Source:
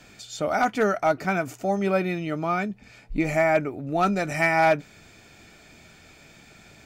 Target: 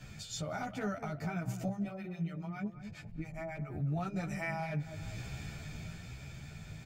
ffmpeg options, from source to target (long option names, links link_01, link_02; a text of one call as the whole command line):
ffmpeg -i in.wav -filter_complex "[0:a]lowshelf=frequency=200:width_type=q:width=1.5:gain=11.5,dynaudnorm=framelen=250:gausssize=13:maxgain=11.5dB,alimiter=level_in=1.5dB:limit=-24dB:level=0:latency=1:release=398,volume=-1.5dB,asettb=1/sr,asplit=3[link_01][link_02][link_03];[link_01]atrim=end=1.684[link_04];[link_02]atrim=start=1.68:end=3.7,asetpts=PTS-STARTPTS,afade=type=in:duration=0.004:curve=qsin,afade=type=out:start_time=2.016:duration=0.004:curve=qsin,acrossover=split=690[link_05][link_06];[link_05]aeval=exprs='val(0)*(1-1/2+1/2*cos(2*PI*7.3*n/s))':channel_layout=same[link_07];[link_06]aeval=exprs='val(0)*(1-1/2-1/2*cos(2*PI*7.3*n/s))':channel_layout=same[link_08];[link_07][link_08]amix=inputs=2:normalize=0[link_09];[link_03]atrim=start=3.696[link_10];[link_04][link_09]acrossfade=duration=0.004:curve1=hsin:curve2=qsin[link_11];[link_11][link_10]acrossfade=duration=0.004:curve1=qsin:curve2=hsin,asplit=2[link_12][link_13];[link_13]adelay=207,lowpass=frequency=840:poles=1,volume=-9dB,asplit=2[link_14][link_15];[link_15]adelay=207,lowpass=frequency=840:poles=1,volume=0.48,asplit=2[link_16][link_17];[link_17]adelay=207,lowpass=frequency=840:poles=1,volume=0.48,asplit=2[link_18][link_19];[link_19]adelay=207,lowpass=frequency=840:poles=1,volume=0.48,asplit=2[link_20][link_21];[link_21]adelay=207,lowpass=frequency=840:poles=1,volume=0.48[link_22];[link_12][link_14][link_16][link_18][link_20][link_22]amix=inputs=6:normalize=0,asplit=2[link_23][link_24];[link_24]adelay=11.7,afreqshift=1.1[link_25];[link_23][link_25]amix=inputs=2:normalize=1,volume=-1dB" out.wav